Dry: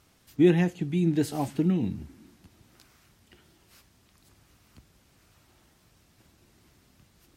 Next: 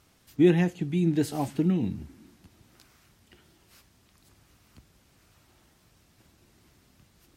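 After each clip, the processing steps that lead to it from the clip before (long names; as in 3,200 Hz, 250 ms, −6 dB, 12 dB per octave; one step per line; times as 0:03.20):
no processing that can be heard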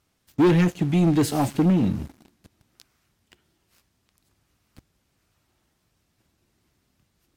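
leveller curve on the samples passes 3
level −2.5 dB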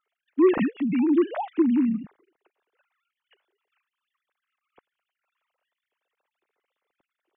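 three sine waves on the formant tracks
level −2 dB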